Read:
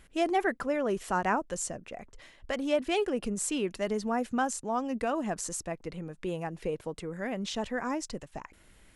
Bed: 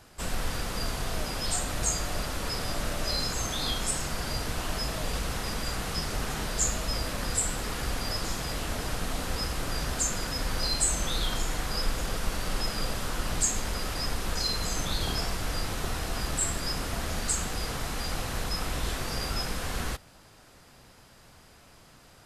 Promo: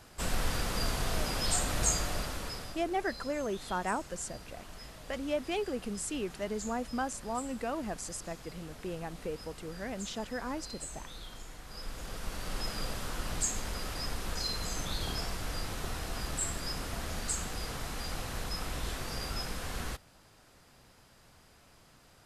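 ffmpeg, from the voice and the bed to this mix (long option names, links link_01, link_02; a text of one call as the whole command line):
ffmpeg -i stem1.wav -i stem2.wav -filter_complex "[0:a]adelay=2600,volume=-5dB[link_01];[1:a]volume=11dB,afade=type=out:start_time=1.9:duration=0.92:silence=0.149624,afade=type=in:start_time=11.64:duration=1.04:silence=0.266073[link_02];[link_01][link_02]amix=inputs=2:normalize=0" out.wav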